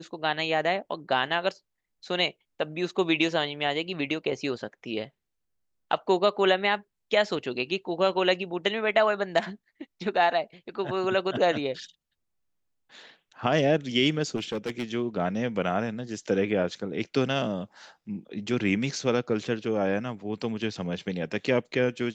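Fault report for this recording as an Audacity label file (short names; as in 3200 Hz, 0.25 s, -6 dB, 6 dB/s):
14.350000	14.840000	clipped -25.5 dBFS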